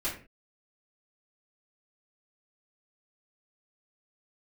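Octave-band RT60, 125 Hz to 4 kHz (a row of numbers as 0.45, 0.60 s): 0.40 s, 0.45 s, 0.40 s, 0.35 s, n/a, 0.25 s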